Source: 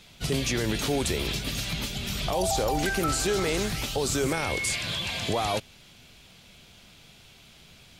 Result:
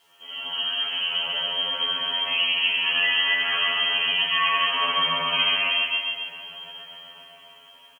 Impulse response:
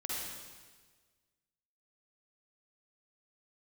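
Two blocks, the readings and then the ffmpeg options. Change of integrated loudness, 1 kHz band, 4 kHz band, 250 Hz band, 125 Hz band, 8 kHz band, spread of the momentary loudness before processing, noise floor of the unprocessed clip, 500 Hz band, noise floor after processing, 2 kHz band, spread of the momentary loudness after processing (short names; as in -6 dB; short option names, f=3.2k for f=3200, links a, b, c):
+6.0 dB, +4.0 dB, +12.0 dB, -15.5 dB, -19.0 dB, under -30 dB, 5 LU, -53 dBFS, -10.0 dB, -51 dBFS, +9.0 dB, 17 LU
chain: -filter_complex "[0:a]highshelf=f=2k:g=-5.5,asplit=2[a][b];[b]acompressor=threshold=-43dB:ratio=4,volume=-2.5dB[c];[a][c]amix=inputs=2:normalize=0[d];[1:a]atrim=start_sample=2205[e];[d][e]afir=irnorm=-1:irlink=0,dynaudnorm=f=250:g=11:m=15dB,afftfilt=real='re*lt(hypot(re,im),1)':imag='im*lt(hypot(re,im),1)':win_size=1024:overlap=0.75,lowpass=f=2.8k:t=q:w=0.5098,lowpass=f=2.8k:t=q:w=0.6013,lowpass=f=2.8k:t=q:w=0.9,lowpass=f=2.8k:t=q:w=2.563,afreqshift=-3300,lowshelf=f=97:g=-9.5,aecho=1:1:7.2:0.69,aecho=1:1:137|274|411|548|685|822|959:0.562|0.309|0.17|0.0936|0.0515|0.0283|0.0156,acrusher=bits=8:mix=0:aa=0.000001,highpass=74,afftfilt=real='re*2*eq(mod(b,4),0)':imag='im*2*eq(mod(b,4),0)':win_size=2048:overlap=0.75,volume=-5.5dB"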